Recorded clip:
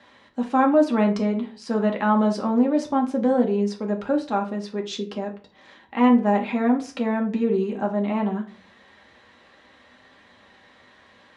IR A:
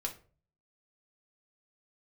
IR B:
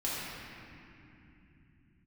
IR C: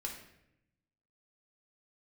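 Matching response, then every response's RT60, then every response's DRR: A; 0.40, 2.7, 0.80 seconds; 1.0, −9.0, −0.5 decibels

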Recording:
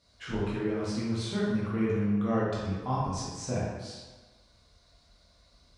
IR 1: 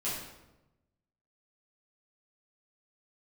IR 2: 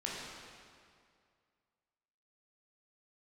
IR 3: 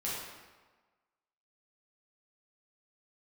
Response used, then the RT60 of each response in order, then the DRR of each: 3; 1.0, 2.2, 1.3 seconds; −10.0, −5.5, −8.0 decibels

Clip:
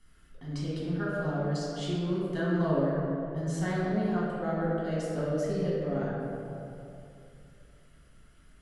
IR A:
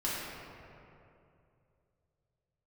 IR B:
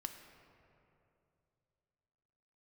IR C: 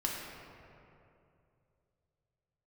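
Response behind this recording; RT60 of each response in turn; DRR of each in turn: A; 2.7, 2.7, 2.7 seconds; −8.5, 5.0, −3.0 decibels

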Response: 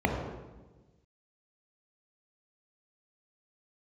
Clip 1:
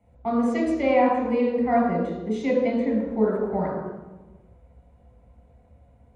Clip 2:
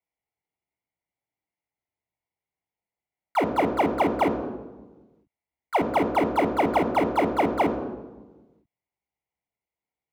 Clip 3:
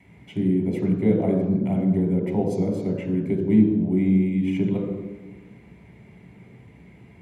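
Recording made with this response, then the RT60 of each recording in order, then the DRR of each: 3; 1.2, 1.2, 1.2 seconds; −5.0, 7.0, 0.5 decibels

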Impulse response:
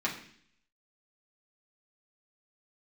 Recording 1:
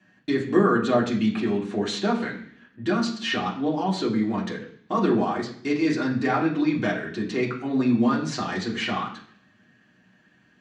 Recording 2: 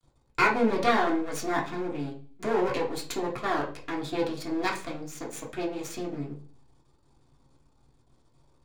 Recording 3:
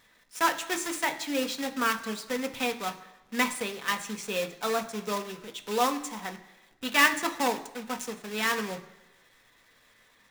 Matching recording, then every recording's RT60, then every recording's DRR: 1; 0.55, 0.45, 1.0 seconds; −5.0, −3.0, 5.5 decibels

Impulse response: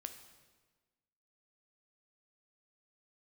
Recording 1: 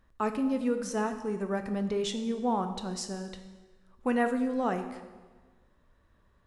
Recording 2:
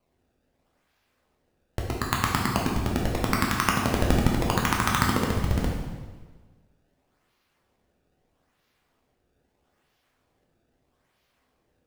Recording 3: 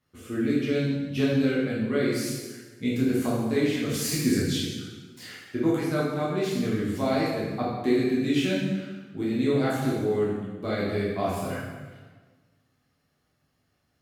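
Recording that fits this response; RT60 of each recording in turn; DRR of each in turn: 1; 1.4, 1.4, 1.4 seconds; 7.0, −2.0, −7.5 decibels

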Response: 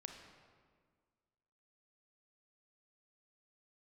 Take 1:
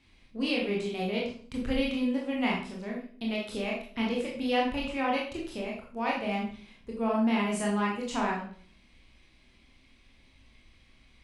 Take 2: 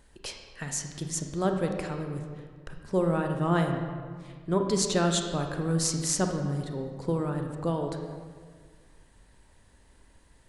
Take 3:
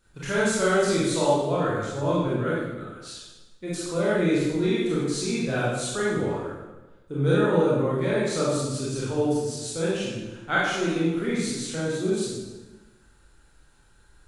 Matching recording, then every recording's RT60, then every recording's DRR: 2; 0.50, 1.7, 1.2 seconds; −3.0, 3.5, −8.5 decibels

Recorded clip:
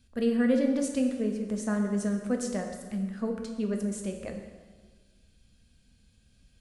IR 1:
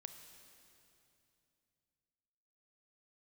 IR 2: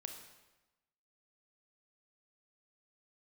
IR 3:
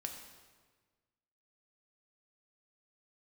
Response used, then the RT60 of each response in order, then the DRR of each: 3; 2.8, 1.1, 1.5 seconds; 7.0, 4.5, 2.5 decibels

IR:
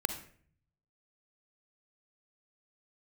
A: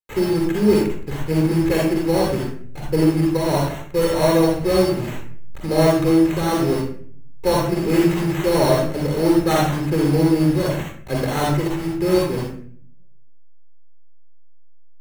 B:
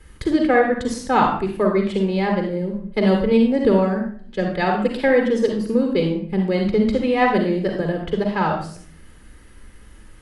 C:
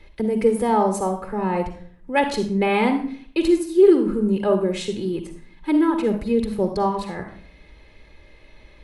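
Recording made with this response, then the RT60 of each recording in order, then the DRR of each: C; 0.50, 0.50, 0.50 seconds; −2.0, 2.5, 7.5 decibels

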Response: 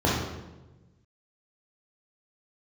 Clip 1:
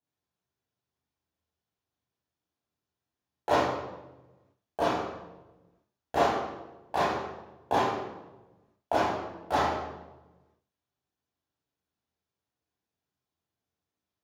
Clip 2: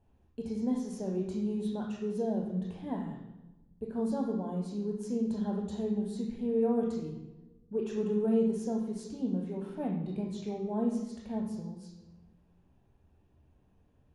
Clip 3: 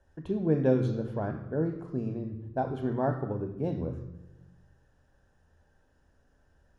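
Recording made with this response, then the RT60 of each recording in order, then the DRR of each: 1; 1.1, 1.1, 1.1 seconds; −5.5, 2.0, 8.0 decibels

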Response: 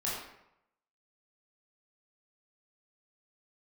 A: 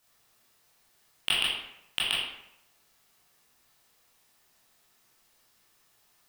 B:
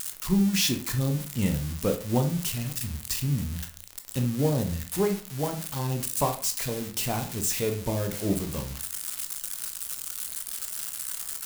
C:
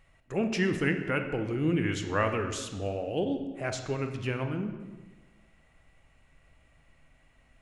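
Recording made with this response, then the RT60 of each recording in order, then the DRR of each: A; 0.80, 0.45, 1.3 seconds; −7.5, 5.0, 6.0 decibels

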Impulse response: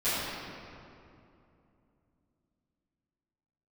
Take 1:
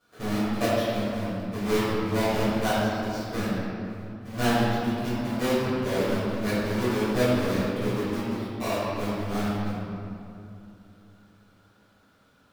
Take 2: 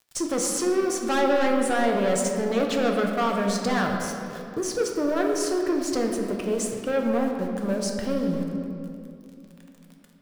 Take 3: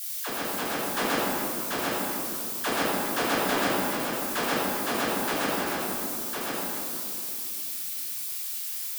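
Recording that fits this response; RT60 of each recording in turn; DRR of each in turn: 1; 2.7, 2.8, 2.7 seconds; −18.5, 1.0, −8.5 decibels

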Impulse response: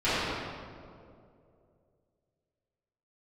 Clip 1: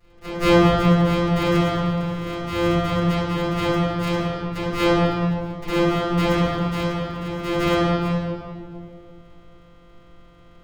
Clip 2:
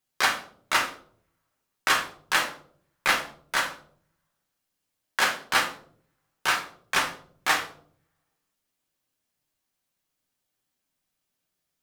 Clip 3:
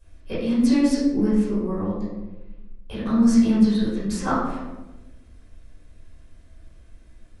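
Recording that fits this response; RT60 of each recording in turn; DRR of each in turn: 1; 2.5, 0.55, 1.1 seconds; −17.5, 0.0, −13.5 decibels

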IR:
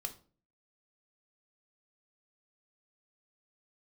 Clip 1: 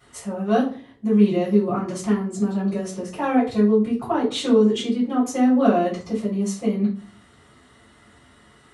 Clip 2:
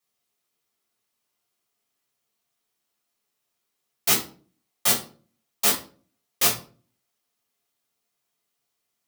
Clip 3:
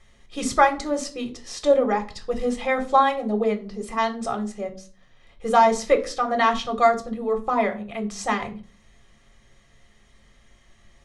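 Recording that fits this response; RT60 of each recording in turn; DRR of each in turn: 3; 0.40, 0.40, 0.40 seconds; −9.5, −4.5, 5.5 decibels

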